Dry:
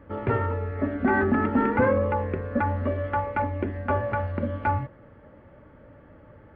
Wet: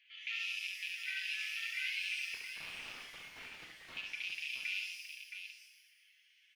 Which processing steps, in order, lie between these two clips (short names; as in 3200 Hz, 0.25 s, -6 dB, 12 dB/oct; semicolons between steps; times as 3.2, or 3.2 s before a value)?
rattling part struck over -27 dBFS, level -31 dBFS; reverb removal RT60 0.91 s; steep high-pass 2500 Hz 48 dB/oct; tilt +3.5 dB/oct; comb 5.9 ms, depth 71%; limiter -36 dBFS, peak gain reduction 7.5 dB; 2.34–3.97 wrapped overs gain 49 dB; air absorption 270 m; tapped delay 69/670 ms -4.5/-7.5 dB; shimmer reverb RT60 1.1 s, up +12 st, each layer -8 dB, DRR 4.5 dB; gain +9.5 dB